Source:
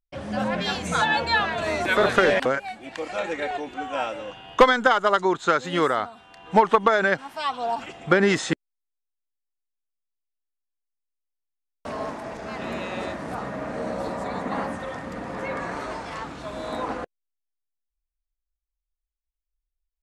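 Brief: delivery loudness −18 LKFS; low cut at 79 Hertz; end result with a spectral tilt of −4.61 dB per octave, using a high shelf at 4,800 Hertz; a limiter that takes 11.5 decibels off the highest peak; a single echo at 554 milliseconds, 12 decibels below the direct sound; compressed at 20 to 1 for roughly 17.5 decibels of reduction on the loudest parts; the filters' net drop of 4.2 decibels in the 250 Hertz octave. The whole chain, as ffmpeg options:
ffmpeg -i in.wav -af "highpass=79,equalizer=frequency=250:width_type=o:gain=-6,highshelf=frequency=4800:gain=-7,acompressor=threshold=-28dB:ratio=20,alimiter=level_in=1.5dB:limit=-24dB:level=0:latency=1,volume=-1.5dB,aecho=1:1:554:0.251,volume=17.5dB" out.wav

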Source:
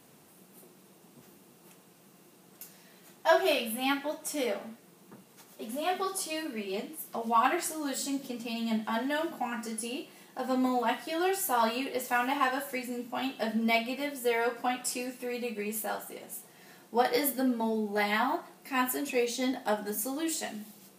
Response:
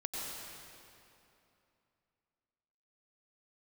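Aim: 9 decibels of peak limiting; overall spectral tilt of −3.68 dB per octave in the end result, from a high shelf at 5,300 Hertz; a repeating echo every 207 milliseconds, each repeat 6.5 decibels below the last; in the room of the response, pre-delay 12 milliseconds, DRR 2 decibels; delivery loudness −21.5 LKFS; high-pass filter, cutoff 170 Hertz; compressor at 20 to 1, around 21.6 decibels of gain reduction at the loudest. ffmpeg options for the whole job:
-filter_complex "[0:a]highpass=170,highshelf=frequency=5300:gain=-7.5,acompressor=threshold=-41dB:ratio=20,alimiter=level_in=13.5dB:limit=-24dB:level=0:latency=1,volume=-13.5dB,aecho=1:1:207|414|621|828|1035|1242:0.473|0.222|0.105|0.0491|0.0231|0.0109,asplit=2[link_01][link_02];[1:a]atrim=start_sample=2205,adelay=12[link_03];[link_02][link_03]afir=irnorm=-1:irlink=0,volume=-4.5dB[link_04];[link_01][link_04]amix=inputs=2:normalize=0,volume=22.5dB"

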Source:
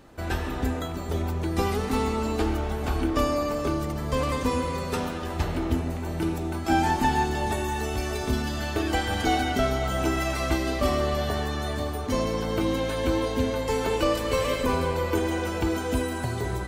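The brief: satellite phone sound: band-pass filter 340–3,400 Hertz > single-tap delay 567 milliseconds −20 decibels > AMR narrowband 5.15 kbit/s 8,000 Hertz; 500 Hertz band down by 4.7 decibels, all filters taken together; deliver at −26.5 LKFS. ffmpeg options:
ffmpeg -i in.wav -af "highpass=340,lowpass=3400,equalizer=frequency=500:width_type=o:gain=-4.5,aecho=1:1:567:0.1,volume=7.5dB" -ar 8000 -c:a libopencore_amrnb -b:a 5150 out.amr

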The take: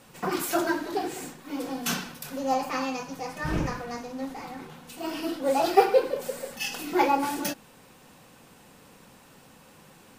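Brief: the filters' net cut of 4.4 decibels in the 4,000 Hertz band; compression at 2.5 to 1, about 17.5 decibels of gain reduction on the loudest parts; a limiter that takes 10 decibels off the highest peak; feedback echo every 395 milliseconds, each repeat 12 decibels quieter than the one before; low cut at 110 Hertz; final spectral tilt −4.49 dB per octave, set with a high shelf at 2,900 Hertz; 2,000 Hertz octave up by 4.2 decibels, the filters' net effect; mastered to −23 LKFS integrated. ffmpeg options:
ffmpeg -i in.wav -af "highpass=110,equalizer=frequency=2000:width_type=o:gain=8.5,highshelf=frequency=2900:gain=-3,equalizer=frequency=4000:width_type=o:gain=-7,acompressor=threshold=-39dB:ratio=2.5,alimiter=level_in=6.5dB:limit=-24dB:level=0:latency=1,volume=-6.5dB,aecho=1:1:395|790|1185:0.251|0.0628|0.0157,volume=17.5dB" out.wav

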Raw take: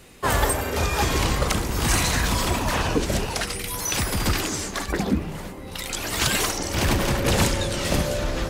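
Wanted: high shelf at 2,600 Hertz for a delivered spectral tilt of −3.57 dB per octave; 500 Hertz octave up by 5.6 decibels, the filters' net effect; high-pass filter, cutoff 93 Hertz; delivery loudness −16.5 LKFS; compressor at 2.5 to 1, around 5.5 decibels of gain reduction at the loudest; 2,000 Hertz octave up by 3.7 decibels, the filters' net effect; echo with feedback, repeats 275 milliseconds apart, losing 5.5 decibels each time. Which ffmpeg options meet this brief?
ffmpeg -i in.wav -af "highpass=93,equalizer=frequency=500:width_type=o:gain=6.5,equalizer=frequency=2000:width_type=o:gain=3,highshelf=frequency=2600:gain=3,acompressor=threshold=-23dB:ratio=2.5,aecho=1:1:275|550|825|1100|1375|1650|1925:0.531|0.281|0.149|0.079|0.0419|0.0222|0.0118,volume=7dB" out.wav

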